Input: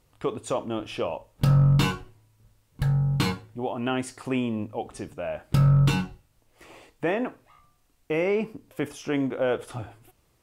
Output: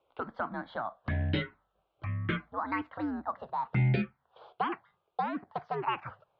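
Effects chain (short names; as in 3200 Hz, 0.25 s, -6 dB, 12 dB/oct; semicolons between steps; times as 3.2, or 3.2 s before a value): speed glide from 127% -> 199%; envelope phaser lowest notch 320 Hz, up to 1300 Hz, full sweep at -17 dBFS; mistuned SSB -110 Hz 280–3300 Hz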